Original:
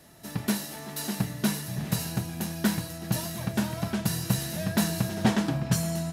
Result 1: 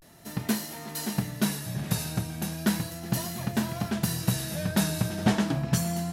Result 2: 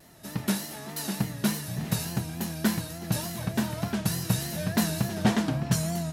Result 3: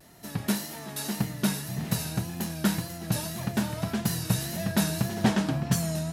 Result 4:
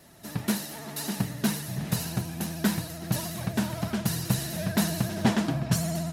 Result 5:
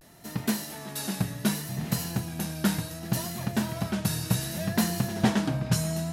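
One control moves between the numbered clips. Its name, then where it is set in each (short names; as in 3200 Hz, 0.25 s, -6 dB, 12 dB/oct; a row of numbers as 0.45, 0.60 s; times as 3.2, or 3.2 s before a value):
vibrato, rate: 0.36, 3.4, 1.8, 16, 0.66 Hz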